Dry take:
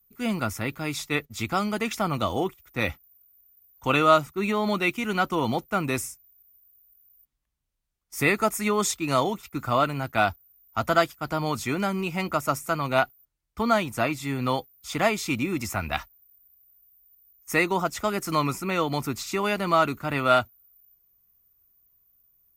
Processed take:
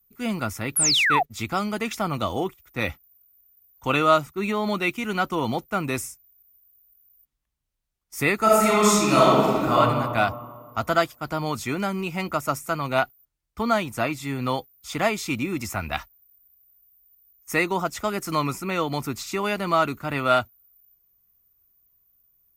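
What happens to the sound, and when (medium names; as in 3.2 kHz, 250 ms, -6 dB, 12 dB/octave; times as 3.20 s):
0.76–1.23 s: painted sound fall 660–12000 Hz -20 dBFS
8.41–9.76 s: reverb throw, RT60 1.9 s, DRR -6.5 dB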